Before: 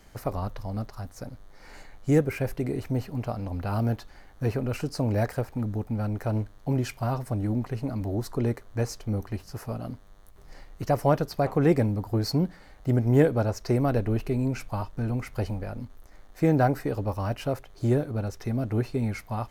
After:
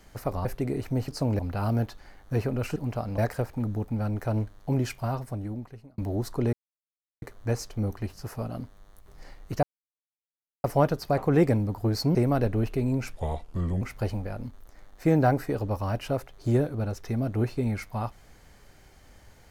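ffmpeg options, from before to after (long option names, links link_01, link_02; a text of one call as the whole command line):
ffmpeg -i in.wav -filter_complex "[0:a]asplit=12[link_01][link_02][link_03][link_04][link_05][link_06][link_07][link_08][link_09][link_10][link_11][link_12];[link_01]atrim=end=0.452[link_13];[link_02]atrim=start=2.438:end=3.072[link_14];[link_03]atrim=start=4.858:end=5.172[link_15];[link_04]atrim=start=3.488:end=4.862[link_16];[link_05]atrim=start=3.068:end=3.492[link_17];[link_06]atrim=start=5.168:end=7.97,asetpts=PTS-STARTPTS,afade=type=out:start_time=1.722:duration=1.08[link_18];[link_07]atrim=start=7.97:end=8.52,asetpts=PTS-STARTPTS,afade=type=in:duration=0.004:curve=hsin,afade=type=out:start_time=0.546:duration=0.004:curve=hsin,apad=pad_dur=0.69[link_19];[link_08]atrim=start=8.52:end=10.93,asetpts=PTS-STARTPTS,afade=type=in:duration=0.004:curve=hsin,afade=type=out:start_time=2.406:duration=0.004:curve=hsin,apad=pad_dur=1.01[link_20];[link_09]atrim=start=10.93:end=12.442,asetpts=PTS-STARTPTS,afade=type=in:duration=0.004:curve=hsin[link_21];[link_10]atrim=start=13.678:end=14.664[link_22];[link_11]atrim=start=14.66:end=15.18,asetpts=PTS-STARTPTS,asetrate=33516,aresample=44100[link_23];[link_12]atrim=start=15.176[link_24];[link_13][link_14]acrossfade=duration=0.004:curve1=hsin:curve2=hsin[link_25];[link_25][link_15]acrossfade=duration=0.004:curve1=hsin:curve2=hsin[link_26];[link_26][link_16]acrossfade=duration=0.004:curve1=hsin:curve2=hsin[link_27];[link_27][link_17]acrossfade=duration=0.004:curve1=hsin:curve2=hsin[link_28];[link_18][link_19][link_20][link_21]concat=n=4:v=0:a=1[link_29];[link_28][link_29]acrossfade=duration=0.004:curve1=hsin:curve2=hsin[link_30];[link_30][link_22]acrossfade=duration=0.004:curve1=hsin:curve2=hsin[link_31];[link_31][link_23]acrossfade=duration=0.004:curve1=hsin:curve2=hsin[link_32];[link_32][link_24]acrossfade=duration=0.004:curve1=hsin:curve2=hsin" out.wav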